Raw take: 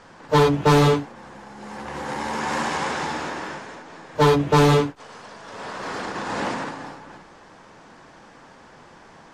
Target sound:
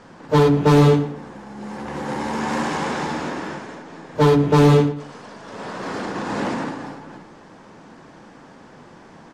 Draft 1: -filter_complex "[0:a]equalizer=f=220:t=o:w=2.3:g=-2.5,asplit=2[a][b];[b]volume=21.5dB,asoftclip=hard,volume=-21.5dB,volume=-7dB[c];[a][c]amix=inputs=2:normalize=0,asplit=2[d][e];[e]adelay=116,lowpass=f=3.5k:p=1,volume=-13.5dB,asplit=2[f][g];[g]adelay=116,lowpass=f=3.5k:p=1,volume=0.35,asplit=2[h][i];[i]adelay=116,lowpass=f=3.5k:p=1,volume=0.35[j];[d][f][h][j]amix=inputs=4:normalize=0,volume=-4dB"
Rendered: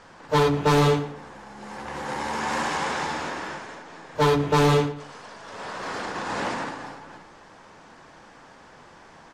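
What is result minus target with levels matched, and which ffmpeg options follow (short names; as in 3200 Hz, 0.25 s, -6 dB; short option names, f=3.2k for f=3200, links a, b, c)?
250 Hz band -3.0 dB
-filter_complex "[0:a]equalizer=f=220:t=o:w=2.3:g=8,asplit=2[a][b];[b]volume=21.5dB,asoftclip=hard,volume=-21.5dB,volume=-7dB[c];[a][c]amix=inputs=2:normalize=0,asplit=2[d][e];[e]adelay=116,lowpass=f=3.5k:p=1,volume=-13.5dB,asplit=2[f][g];[g]adelay=116,lowpass=f=3.5k:p=1,volume=0.35,asplit=2[h][i];[i]adelay=116,lowpass=f=3.5k:p=1,volume=0.35[j];[d][f][h][j]amix=inputs=4:normalize=0,volume=-4dB"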